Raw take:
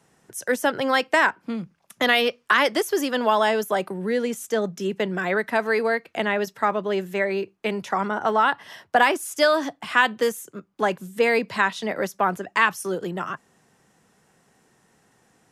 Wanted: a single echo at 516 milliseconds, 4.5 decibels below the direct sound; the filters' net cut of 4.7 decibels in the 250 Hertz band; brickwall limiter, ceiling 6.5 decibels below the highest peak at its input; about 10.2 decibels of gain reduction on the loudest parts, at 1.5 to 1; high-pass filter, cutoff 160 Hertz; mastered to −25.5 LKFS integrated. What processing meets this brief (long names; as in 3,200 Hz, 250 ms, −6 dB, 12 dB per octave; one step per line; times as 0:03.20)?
high-pass filter 160 Hz
parametric band 250 Hz −5 dB
downward compressor 1.5 to 1, threshold −43 dBFS
brickwall limiter −21.5 dBFS
single-tap delay 516 ms −4.5 dB
level +7.5 dB